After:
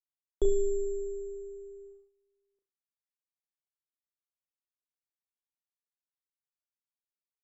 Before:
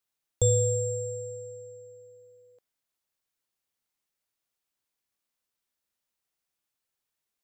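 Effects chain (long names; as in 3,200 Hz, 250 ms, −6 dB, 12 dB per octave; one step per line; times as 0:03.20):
flutter between parallel walls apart 6 metres, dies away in 0.31 s
frequency shifter −95 Hz
noise gate −49 dBFS, range −22 dB
low-pass filter 1,900 Hz 12 dB per octave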